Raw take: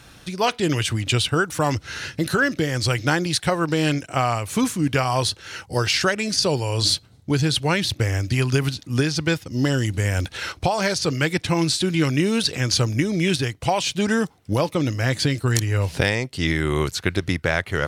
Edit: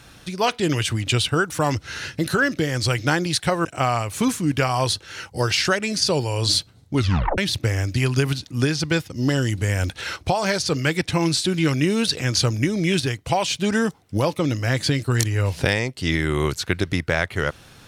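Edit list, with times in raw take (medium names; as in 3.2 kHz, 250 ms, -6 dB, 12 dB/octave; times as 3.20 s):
3.65–4.01 s: delete
7.31 s: tape stop 0.43 s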